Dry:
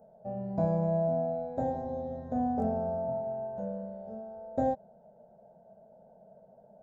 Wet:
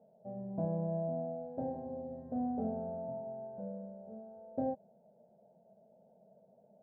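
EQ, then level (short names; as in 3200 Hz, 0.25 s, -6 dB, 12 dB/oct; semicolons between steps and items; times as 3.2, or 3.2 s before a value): band-pass 290 Hz, Q 0.71; -4.0 dB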